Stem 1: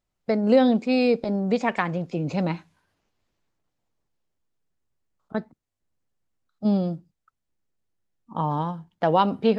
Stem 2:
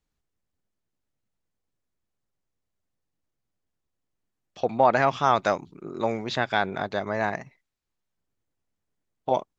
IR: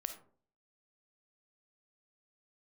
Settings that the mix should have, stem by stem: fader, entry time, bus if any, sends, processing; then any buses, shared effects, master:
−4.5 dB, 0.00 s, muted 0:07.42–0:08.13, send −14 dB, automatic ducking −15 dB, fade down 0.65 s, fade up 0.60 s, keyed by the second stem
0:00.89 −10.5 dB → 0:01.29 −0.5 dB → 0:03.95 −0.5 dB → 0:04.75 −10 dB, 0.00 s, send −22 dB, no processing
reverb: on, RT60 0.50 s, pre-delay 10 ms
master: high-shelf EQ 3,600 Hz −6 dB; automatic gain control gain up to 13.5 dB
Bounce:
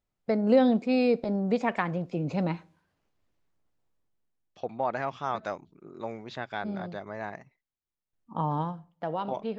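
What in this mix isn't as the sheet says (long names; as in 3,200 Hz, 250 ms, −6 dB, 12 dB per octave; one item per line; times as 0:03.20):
stem 2: send off
master: missing automatic gain control gain up to 13.5 dB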